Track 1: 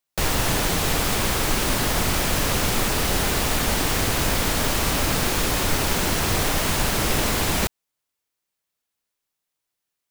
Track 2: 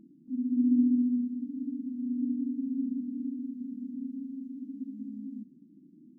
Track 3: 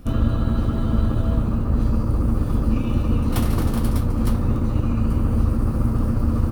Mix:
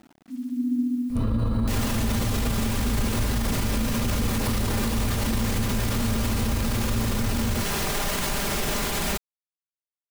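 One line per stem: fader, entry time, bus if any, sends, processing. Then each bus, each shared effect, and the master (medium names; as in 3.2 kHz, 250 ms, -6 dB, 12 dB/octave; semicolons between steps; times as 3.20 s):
-0.5 dB, 1.50 s, no send, comb 5 ms, depth 50%
-1.0 dB, 0.00 s, no send, none
+2.5 dB, 1.10 s, no send, rippled EQ curve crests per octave 0.92, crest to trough 8 dB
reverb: none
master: bit crusher 9-bit; peak limiter -16.5 dBFS, peak gain reduction 14.5 dB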